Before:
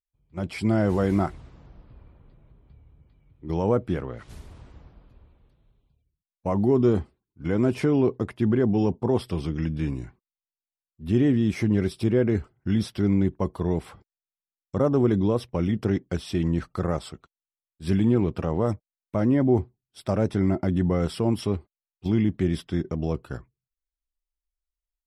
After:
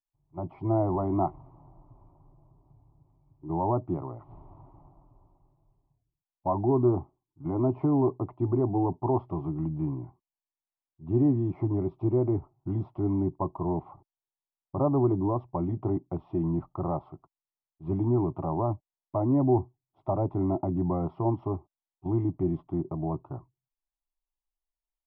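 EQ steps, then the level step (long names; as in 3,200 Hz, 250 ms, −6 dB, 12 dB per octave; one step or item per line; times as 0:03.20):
transistor ladder low-pass 1,200 Hz, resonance 45%
phaser with its sweep stopped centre 320 Hz, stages 8
+7.5 dB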